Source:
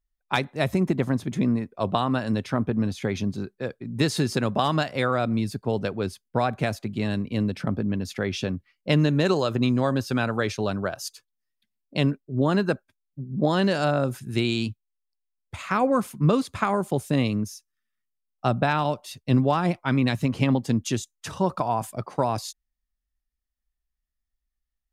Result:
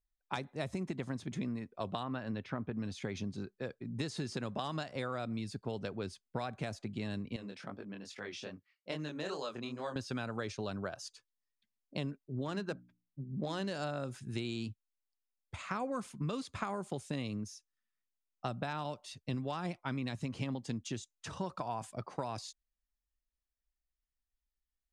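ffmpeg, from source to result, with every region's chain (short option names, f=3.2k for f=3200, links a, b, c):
-filter_complex "[0:a]asettb=1/sr,asplit=3[a][b][c];[a]atrim=end=2.034[d];[b]atrim=start=2.03:end=2.77,asetpts=PTS-STARTPTS,afade=t=in:d=0.004:c=qsin,afade=t=out:st=0.736:d=0.004:c=qsin,lowpass=2.2k,aemphasis=mode=production:type=50kf[e];[c]atrim=start=2.766[f];[d][e]acrossfade=d=0.004:c1=hsin:c2=qsin[g];[g][f]acrossfade=d=0.004:c1=qsin:c2=hsin,asettb=1/sr,asplit=3[h][i][j];[h]atrim=end=7.364[k];[i]atrim=start=7.36:end=9.96,asetpts=PTS-STARTPTS,afade=t=in:d=0.004:c=qsin,afade=t=out:st=2.596:d=0.004:c=qsin,highpass=f=630:p=1,flanger=delay=20:depth=6.8:speed=2.4[l];[j]atrim=start=9.956[m];[k][l]acrossfade=d=0.004:c1=hsin:c2=qsin[n];[n][m]acrossfade=d=0.004:c1=qsin:c2=hsin,asettb=1/sr,asplit=3[o][p][q];[o]atrim=end=12.454[r];[p]atrim=start=12.45:end=13.71,asetpts=PTS-STARTPTS,afade=t=in:d=0.004:c=qsin,afade=t=out:st=1.256:d=0.004:c=qsin,highshelf=f=9.6k:g=6,bandreject=f=60:t=h:w=6,bandreject=f=120:t=h:w=6,bandreject=f=180:t=h:w=6,bandreject=f=240:t=h:w=6,bandreject=f=300:t=h:w=6,adynamicsmooth=sensitivity=6:basefreq=3.6k[s];[q]atrim=start=13.706[t];[r][s]acrossfade=d=0.004:c1=hsin:c2=qsin[u];[u][t]acrossfade=d=0.004:c1=qsin:c2=hsin,lowpass=f=8.9k:w=0.5412,lowpass=f=8.9k:w=1.3066,acrossover=split=1600|4500[v][w][x];[v]acompressor=threshold=-28dB:ratio=4[y];[w]acompressor=threshold=-41dB:ratio=4[z];[x]acompressor=threshold=-42dB:ratio=4[aa];[y][z][aa]amix=inputs=3:normalize=0,volume=-7.5dB"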